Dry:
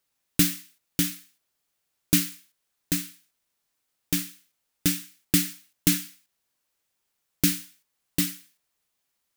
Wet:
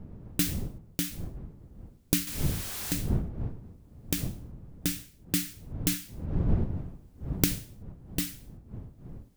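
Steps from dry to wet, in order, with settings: 2.27–2.93 zero-crossing step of -28 dBFS; recorder AGC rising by 7.7 dB/s; wind noise 140 Hz -28 dBFS; gain -7 dB

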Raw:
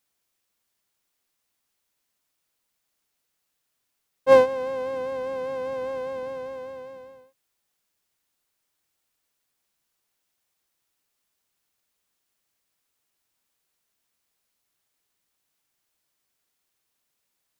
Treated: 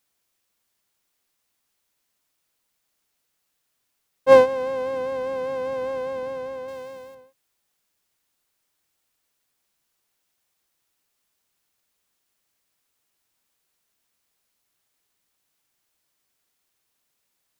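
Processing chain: 6.68–7.15 high shelf 3200 Hz +10.5 dB; gain +2.5 dB

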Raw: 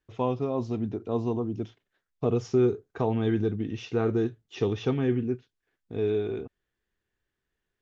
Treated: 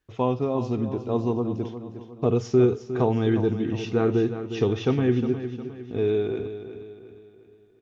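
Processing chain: feedback echo 0.358 s, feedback 44%, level -11 dB; on a send at -17.5 dB: reverb, pre-delay 3 ms; on the sum: gain +3.5 dB

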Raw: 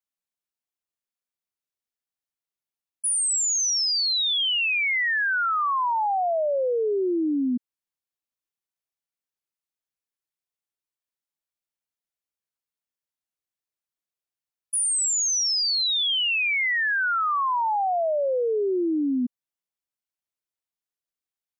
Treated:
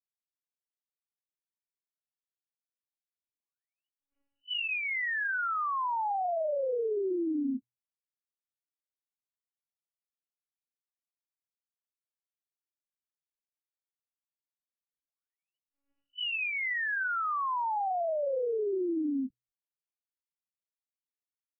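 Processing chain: notches 60/120 Hz; loudest bins only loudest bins 1; monotone LPC vocoder at 8 kHz 280 Hz; gain -2 dB; MP3 8 kbps 12000 Hz

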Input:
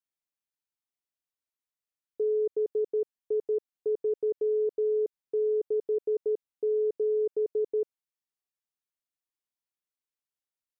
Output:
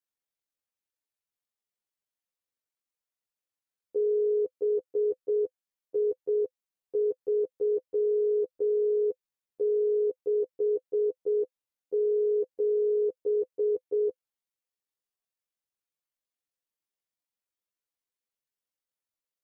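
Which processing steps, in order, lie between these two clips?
bell 510 Hz +6 dB 0.28 oct; granular stretch 1.8×, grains 44 ms

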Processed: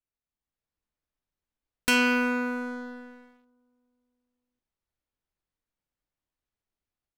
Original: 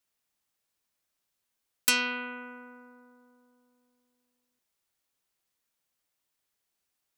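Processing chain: RIAA curve playback; AGC gain up to 7 dB; bell 110 Hz -3.5 dB 2 oct; on a send at -16 dB: reverb RT60 0.95 s, pre-delay 3 ms; on the sum: sample leveller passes 3; gain -7 dB

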